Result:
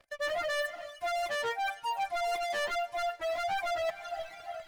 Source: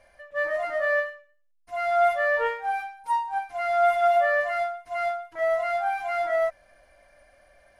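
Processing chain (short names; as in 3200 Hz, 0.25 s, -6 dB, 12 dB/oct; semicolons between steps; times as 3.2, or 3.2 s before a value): sample leveller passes 5; diffused feedback echo 0.639 s, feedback 50%, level -14.5 dB; reverb removal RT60 1.8 s; time stretch by phase-locked vocoder 0.6×; reverse; compressor 6:1, threshold -28 dBFS, peak gain reduction 14.5 dB; reverse; gain -3 dB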